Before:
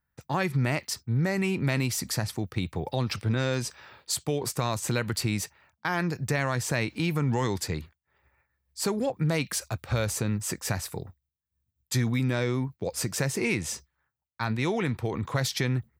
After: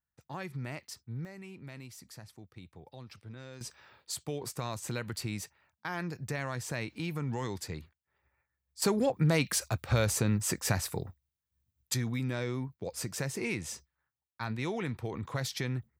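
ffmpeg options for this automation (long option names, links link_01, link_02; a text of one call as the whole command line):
ffmpeg -i in.wav -af "asetnsamples=nb_out_samples=441:pad=0,asendcmd='1.25 volume volume -20dB;3.61 volume volume -8.5dB;8.82 volume volume 0dB;11.94 volume volume -7dB',volume=-13dB" out.wav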